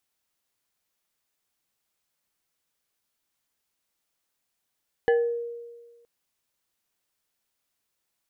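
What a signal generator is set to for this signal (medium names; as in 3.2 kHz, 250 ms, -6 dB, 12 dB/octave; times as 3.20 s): FM tone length 0.97 s, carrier 471 Hz, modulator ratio 2.65, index 0.71, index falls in 0.45 s exponential, decay 1.46 s, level -16 dB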